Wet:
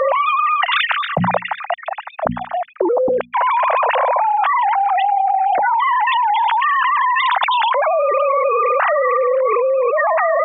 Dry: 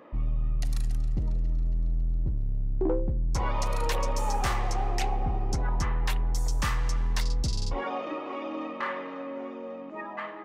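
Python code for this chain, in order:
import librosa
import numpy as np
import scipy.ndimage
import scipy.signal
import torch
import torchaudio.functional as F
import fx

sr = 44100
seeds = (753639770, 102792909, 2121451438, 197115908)

y = fx.sine_speech(x, sr)
y = fx.low_shelf_res(y, sr, hz=470.0, db=-9.0, q=3.0)
y = fx.hum_notches(y, sr, base_hz=60, count=4)
y = fx.env_flatten(y, sr, amount_pct=100)
y = y * 10.0 ** (-4.5 / 20.0)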